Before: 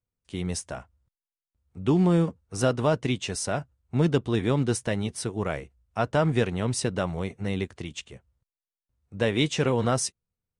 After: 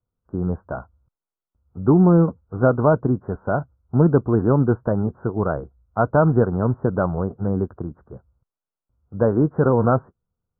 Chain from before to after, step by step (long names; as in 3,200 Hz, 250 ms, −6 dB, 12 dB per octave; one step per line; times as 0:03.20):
Butterworth low-pass 1,500 Hz 96 dB per octave
level +7 dB